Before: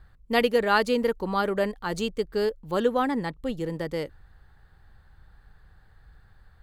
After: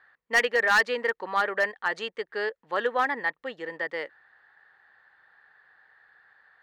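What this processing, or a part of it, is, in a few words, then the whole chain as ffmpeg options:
megaphone: -af "highpass=650,lowpass=3100,equalizer=f=1800:t=o:w=0.34:g=11,asoftclip=type=hard:threshold=0.133,volume=1.26"

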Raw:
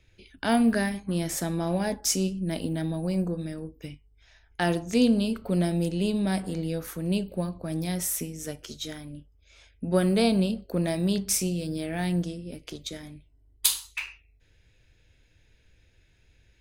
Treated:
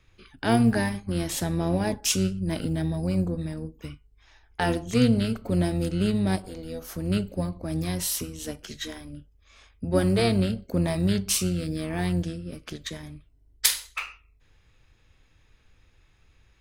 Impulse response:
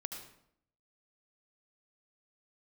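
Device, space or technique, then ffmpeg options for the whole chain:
octave pedal: -filter_complex "[0:a]asplit=3[s0][s1][s2];[s0]afade=t=out:st=6.35:d=0.02[s3];[s1]equalizer=f=125:t=o:w=1:g=-9,equalizer=f=250:t=o:w=1:g=-10,equalizer=f=2000:t=o:w=1:g=-11,equalizer=f=8000:t=o:w=1:g=-5,afade=t=in:st=6.35:d=0.02,afade=t=out:st=6.89:d=0.02[s4];[s2]afade=t=in:st=6.89:d=0.02[s5];[s3][s4][s5]amix=inputs=3:normalize=0,asplit=2[s6][s7];[s7]asetrate=22050,aresample=44100,atempo=2,volume=0.562[s8];[s6][s8]amix=inputs=2:normalize=0"

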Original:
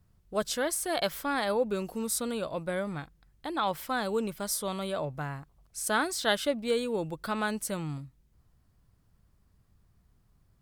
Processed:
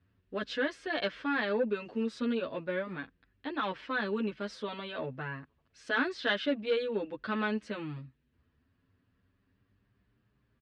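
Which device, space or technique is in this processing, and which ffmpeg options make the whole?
barber-pole flanger into a guitar amplifier: -filter_complex "[0:a]asplit=2[s0][s1];[s1]adelay=8.4,afreqshift=0.33[s2];[s0][s2]amix=inputs=2:normalize=1,asoftclip=type=tanh:threshold=0.075,highpass=81,equalizer=f=160:t=q:w=4:g=-7,equalizer=f=260:t=q:w=4:g=9,equalizer=f=430:t=q:w=4:g=4,equalizer=f=770:t=q:w=4:g=-6,equalizer=f=1700:t=q:w=4:g=8,equalizer=f=2700:t=q:w=4:g=6,lowpass=f=4100:w=0.5412,lowpass=f=4100:w=1.3066"

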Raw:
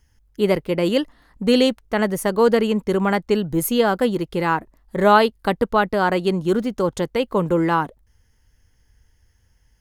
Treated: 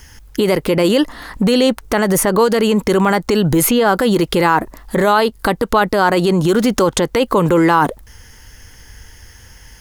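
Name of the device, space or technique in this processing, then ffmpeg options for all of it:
mastering chain: -filter_complex "[0:a]equalizer=f=630:t=o:w=0.77:g=-2,acrossover=split=1800|4000[s0][s1][s2];[s0]acompressor=threshold=0.0891:ratio=4[s3];[s1]acompressor=threshold=0.00562:ratio=4[s4];[s2]acompressor=threshold=0.00891:ratio=4[s5];[s3][s4][s5]amix=inputs=3:normalize=0,acompressor=threshold=0.0447:ratio=2,alimiter=level_in=21.1:limit=0.891:release=50:level=0:latency=1,lowshelf=f=320:g=-8.5,volume=0.891"

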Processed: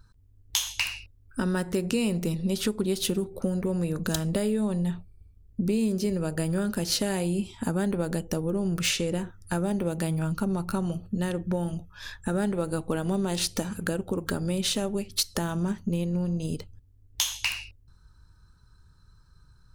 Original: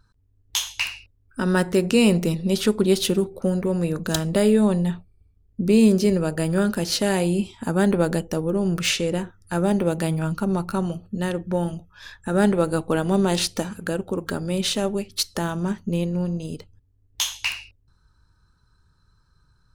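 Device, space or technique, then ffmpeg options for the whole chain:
ASMR close-microphone chain: -af "lowshelf=f=160:g=6,acompressor=threshold=0.0562:ratio=4,highshelf=f=6100:g=5.5"

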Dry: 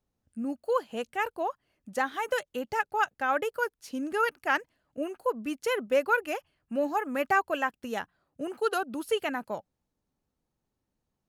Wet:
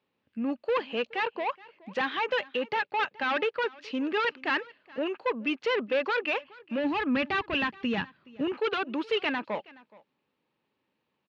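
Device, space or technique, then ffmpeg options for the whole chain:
overdrive pedal into a guitar cabinet: -filter_complex "[0:a]asplit=2[s0][s1];[s1]highpass=f=720:p=1,volume=15.8,asoftclip=type=tanh:threshold=0.237[s2];[s0][s2]amix=inputs=2:normalize=0,lowpass=f=3400:p=1,volume=0.501,highpass=110,equalizer=f=710:t=q:w=4:g=-9,equalizer=f=1400:t=q:w=4:g=-5,equalizer=f=2600:t=q:w=4:g=5,lowpass=f=4000:w=0.5412,lowpass=f=4000:w=1.3066,asplit=3[s3][s4][s5];[s3]afade=t=out:st=6.77:d=0.02[s6];[s4]asubboost=boost=5.5:cutoff=210,afade=t=in:st=6.77:d=0.02,afade=t=out:st=8.54:d=0.02[s7];[s5]afade=t=in:st=8.54:d=0.02[s8];[s6][s7][s8]amix=inputs=3:normalize=0,aecho=1:1:422:0.075,volume=0.562"

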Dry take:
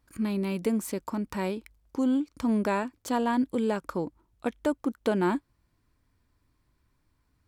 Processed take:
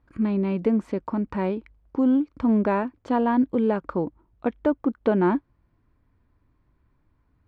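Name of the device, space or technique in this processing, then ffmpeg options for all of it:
phone in a pocket: -af "lowpass=3200,highshelf=f=2200:g=-11,volume=1.88"

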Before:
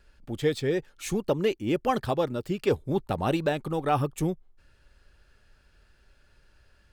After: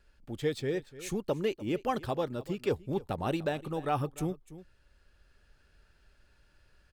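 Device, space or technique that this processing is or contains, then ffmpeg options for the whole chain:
ducked delay: -filter_complex "[0:a]asplit=3[s0][s1][s2];[s1]adelay=296,volume=0.794[s3];[s2]apad=whole_len=318421[s4];[s3][s4]sidechaincompress=threshold=0.0126:ratio=16:attack=32:release=1130[s5];[s0][s5]amix=inputs=2:normalize=0,volume=0.531"

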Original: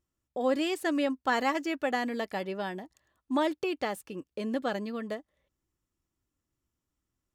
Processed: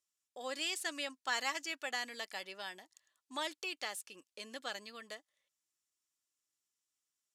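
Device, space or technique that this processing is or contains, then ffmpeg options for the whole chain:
piezo pickup straight into a mixer: -af "lowpass=7900,aderivative,volume=2.24"

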